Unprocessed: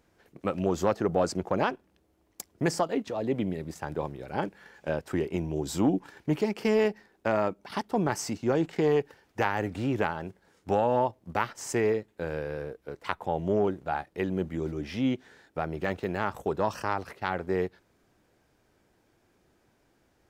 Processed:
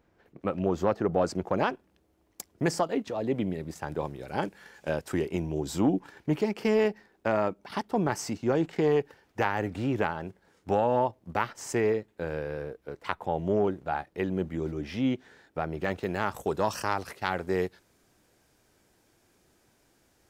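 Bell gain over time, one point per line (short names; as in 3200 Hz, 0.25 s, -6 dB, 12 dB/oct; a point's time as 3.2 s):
bell 10000 Hz 2.3 oct
0.87 s -11 dB
1.62 s -0.5 dB
3.7 s -0.5 dB
4.35 s +7 dB
5.11 s +7 dB
5.69 s -2 dB
15.68 s -2 dB
16.49 s +9.5 dB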